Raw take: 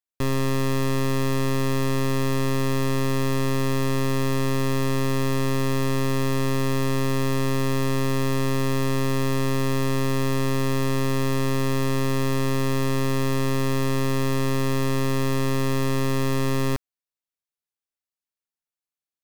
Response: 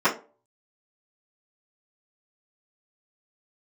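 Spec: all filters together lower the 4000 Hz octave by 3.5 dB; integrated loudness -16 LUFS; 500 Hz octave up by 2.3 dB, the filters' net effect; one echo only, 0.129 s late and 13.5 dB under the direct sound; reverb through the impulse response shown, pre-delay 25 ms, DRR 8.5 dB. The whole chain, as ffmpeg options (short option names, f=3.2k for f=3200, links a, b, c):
-filter_complex "[0:a]equalizer=f=500:t=o:g=3,equalizer=f=4k:t=o:g=-4.5,aecho=1:1:129:0.211,asplit=2[a][b];[1:a]atrim=start_sample=2205,adelay=25[c];[b][c]afir=irnorm=-1:irlink=0,volume=-26.5dB[d];[a][d]amix=inputs=2:normalize=0,volume=8dB"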